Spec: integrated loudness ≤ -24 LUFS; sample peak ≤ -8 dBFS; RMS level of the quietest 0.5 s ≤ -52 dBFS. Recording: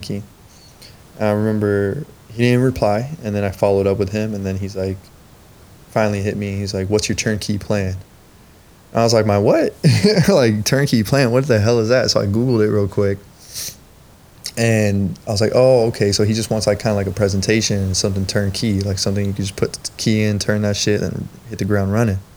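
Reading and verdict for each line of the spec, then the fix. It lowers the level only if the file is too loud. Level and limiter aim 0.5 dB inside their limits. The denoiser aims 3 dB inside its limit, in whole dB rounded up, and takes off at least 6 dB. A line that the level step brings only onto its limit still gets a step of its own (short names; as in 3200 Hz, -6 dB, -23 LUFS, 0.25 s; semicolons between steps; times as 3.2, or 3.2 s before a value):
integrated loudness -17.5 LUFS: fail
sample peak -1.5 dBFS: fail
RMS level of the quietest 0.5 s -46 dBFS: fail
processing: gain -7 dB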